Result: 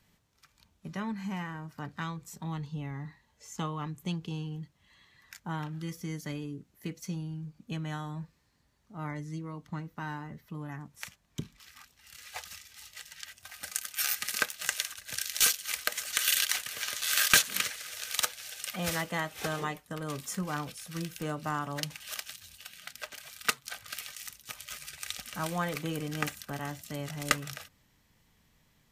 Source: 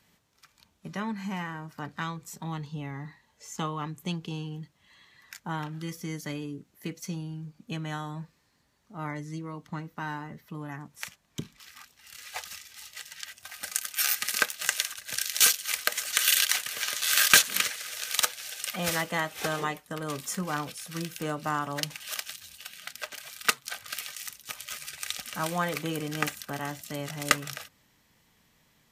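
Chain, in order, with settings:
low-shelf EQ 110 Hz +11 dB
level −4 dB

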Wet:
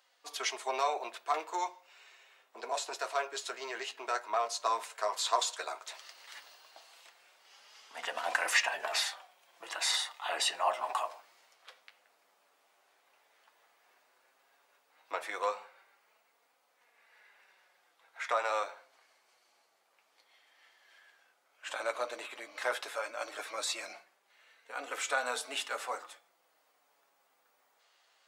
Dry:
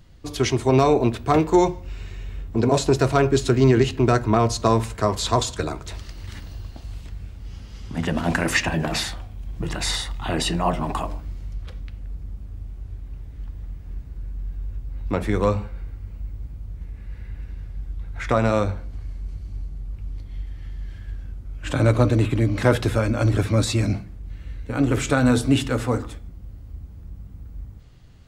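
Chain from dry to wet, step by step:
flanger 0.12 Hz, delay 3.8 ms, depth 6.8 ms, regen −40%
speech leveller within 3 dB 2 s
high-pass filter 650 Hz 24 dB per octave
level −3.5 dB

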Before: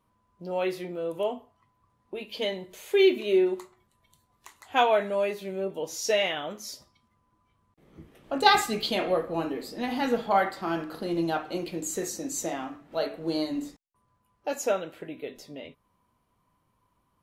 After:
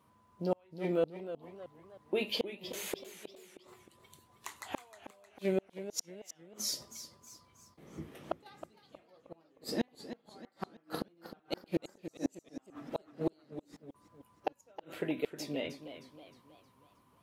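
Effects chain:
high-pass filter 89 Hz 12 dB per octave
gate with flip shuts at −24 dBFS, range −42 dB
feedback echo with a swinging delay time 314 ms, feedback 45%, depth 129 cents, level −11.5 dB
level +4.5 dB

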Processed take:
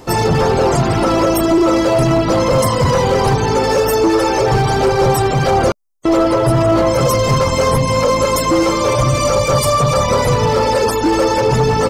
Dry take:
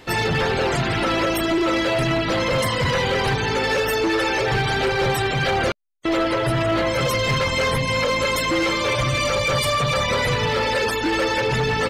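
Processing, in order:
flat-topped bell 2,500 Hz −11 dB
level +8.5 dB

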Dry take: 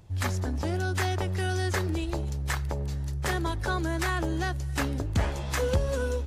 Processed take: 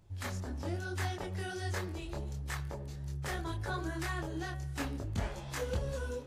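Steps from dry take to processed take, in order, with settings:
multi-voice chorus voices 4, 1 Hz, delay 24 ms, depth 4.6 ms
hum removal 125.6 Hz, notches 28
level −5.5 dB

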